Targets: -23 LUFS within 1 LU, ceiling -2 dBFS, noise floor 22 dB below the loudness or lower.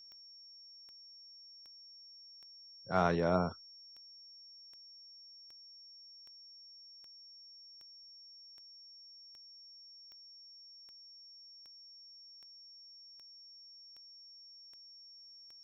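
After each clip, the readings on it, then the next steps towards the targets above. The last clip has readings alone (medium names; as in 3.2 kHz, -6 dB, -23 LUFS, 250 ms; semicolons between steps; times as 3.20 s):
clicks found 21; steady tone 5.5 kHz; tone level -53 dBFS; loudness -44.0 LUFS; peak level -16.0 dBFS; loudness target -23.0 LUFS
-> de-click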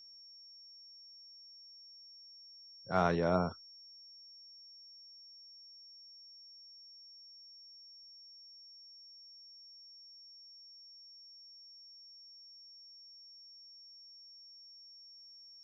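clicks found 0; steady tone 5.5 kHz; tone level -53 dBFS
-> band-stop 5.5 kHz, Q 30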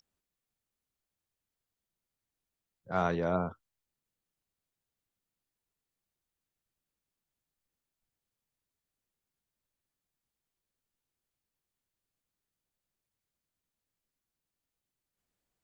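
steady tone not found; loudness -32.5 LUFS; peak level -16.5 dBFS; loudness target -23.0 LUFS
-> trim +9.5 dB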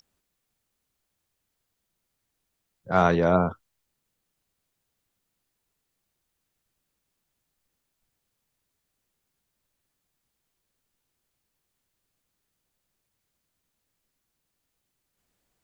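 loudness -23.0 LUFS; peak level -7.0 dBFS; noise floor -80 dBFS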